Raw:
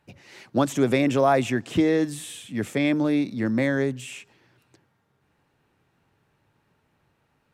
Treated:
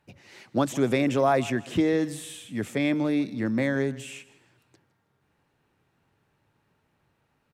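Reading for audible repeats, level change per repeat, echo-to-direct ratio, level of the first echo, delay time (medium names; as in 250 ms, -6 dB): 2, -10.0 dB, -18.5 dB, -19.0 dB, 159 ms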